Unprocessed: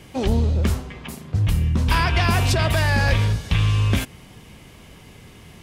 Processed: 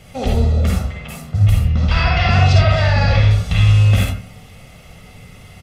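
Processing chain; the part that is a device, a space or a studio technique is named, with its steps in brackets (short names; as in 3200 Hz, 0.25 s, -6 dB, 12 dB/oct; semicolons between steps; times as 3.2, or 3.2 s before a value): 1.59–3.31 LPF 5600 Hz 24 dB/oct; microphone above a desk (comb 1.5 ms, depth 62%; reverb RT60 0.40 s, pre-delay 45 ms, DRR -1.5 dB); gain -1 dB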